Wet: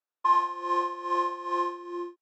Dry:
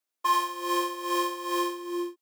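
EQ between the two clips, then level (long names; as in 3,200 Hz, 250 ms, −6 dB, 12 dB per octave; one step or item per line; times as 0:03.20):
dynamic equaliser 800 Hz, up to +7 dB, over −40 dBFS, Q 1.7
high-frequency loss of the air 120 metres
loudspeaker in its box 390–7,700 Hz, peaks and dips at 650 Hz −4 dB, 2,100 Hz −9 dB, 3,100 Hz −9 dB, 4,500 Hz −10 dB, 6,500 Hz −6 dB
0.0 dB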